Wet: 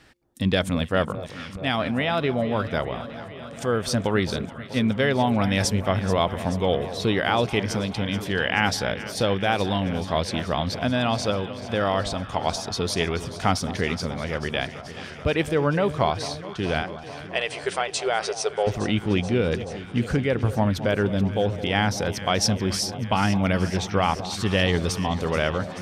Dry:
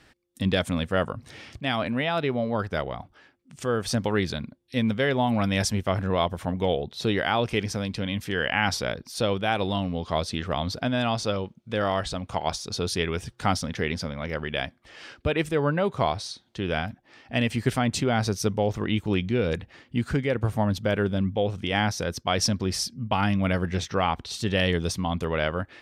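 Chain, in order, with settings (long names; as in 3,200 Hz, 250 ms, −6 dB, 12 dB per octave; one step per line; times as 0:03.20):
0:16.82–0:18.67: linear-phase brick-wall band-pass 360–9,900 Hz
on a send: delay that swaps between a low-pass and a high-pass 216 ms, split 1,000 Hz, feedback 86%, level −13 dB
on the sum: level +2 dB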